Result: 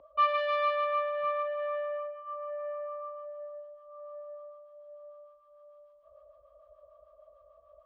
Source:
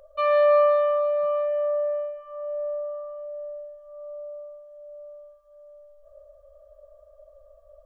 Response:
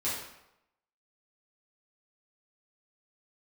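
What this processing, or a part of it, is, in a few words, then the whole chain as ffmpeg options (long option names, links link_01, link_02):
guitar amplifier with harmonic tremolo: -filter_complex "[0:a]acrossover=split=700[link_01][link_02];[link_01]aeval=exprs='val(0)*(1-0.7/2+0.7/2*cos(2*PI*6.7*n/s))':channel_layout=same[link_03];[link_02]aeval=exprs='val(0)*(1-0.7/2-0.7/2*cos(2*PI*6.7*n/s))':channel_layout=same[link_04];[link_03][link_04]amix=inputs=2:normalize=0,asoftclip=type=tanh:threshold=-27dB,highpass=90,equalizer=frequency=93:width_type=q:width=4:gain=-7,equalizer=frequency=290:width_type=q:width=4:gain=7,equalizer=frequency=550:width_type=q:width=4:gain=-10,equalizer=frequency=1100:width_type=q:width=4:gain=8,equalizer=frequency=1600:width_type=q:width=4:gain=-5,lowpass=frequency=3500:width=0.5412,lowpass=frequency=3500:width=1.3066,volume=4dB"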